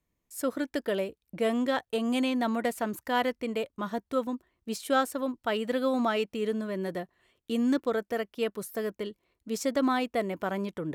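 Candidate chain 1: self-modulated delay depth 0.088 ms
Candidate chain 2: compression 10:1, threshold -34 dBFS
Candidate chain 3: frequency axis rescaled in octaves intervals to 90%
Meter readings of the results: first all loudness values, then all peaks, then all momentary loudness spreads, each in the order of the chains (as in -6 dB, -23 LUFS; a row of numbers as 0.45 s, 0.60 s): -30.5 LUFS, -39.0 LUFS, -32.0 LUFS; -14.5 dBFS, -22.5 dBFS, -14.0 dBFS; 10 LU, 6 LU, 11 LU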